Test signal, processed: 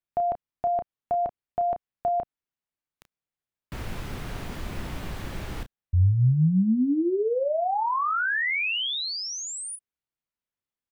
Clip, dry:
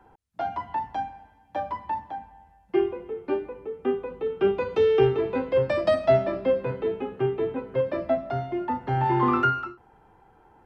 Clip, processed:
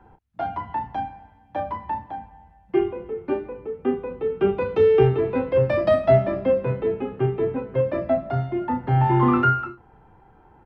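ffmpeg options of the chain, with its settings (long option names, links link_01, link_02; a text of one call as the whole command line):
ffmpeg -i in.wav -filter_complex "[0:a]bass=frequency=250:gain=6,treble=frequency=4000:gain=-10,asplit=2[link_01][link_02];[link_02]adelay=32,volume=-9.5dB[link_03];[link_01][link_03]amix=inputs=2:normalize=0,volume=1.5dB" out.wav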